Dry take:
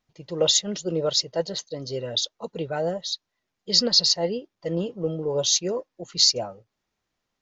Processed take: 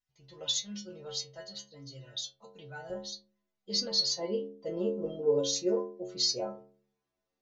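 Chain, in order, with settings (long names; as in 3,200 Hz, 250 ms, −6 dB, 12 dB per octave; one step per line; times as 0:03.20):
parametric band 400 Hz −9.5 dB 2.2 octaves, from 0:02.90 +3.5 dB, from 0:04.19 +10 dB
stiff-string resonator 66 Hz, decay 0.71 s, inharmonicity 0.008
level +1 dB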